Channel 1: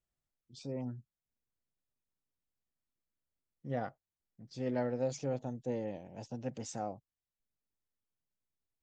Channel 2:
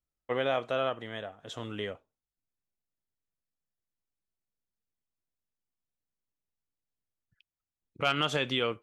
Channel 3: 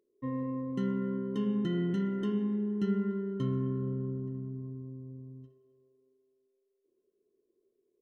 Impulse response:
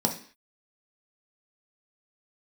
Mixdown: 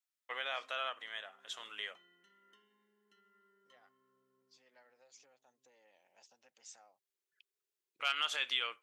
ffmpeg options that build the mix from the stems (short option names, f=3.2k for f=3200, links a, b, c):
-filter_complex "[0:a]volume=-4.5dB[a];[1:a]alimiter=limit=-18.5dB:level=0:latency=1:release=165,volume=0dB[b];[2:a]adelay=300,volume=-6.5dB[c];[a][c]amix=inputs=2:normalize=0,acompressor=threshold=-46dB:ratio=10,volume=0dB[d];[b][d]amix=inputs=2:normalize=0,highpass=1.4k"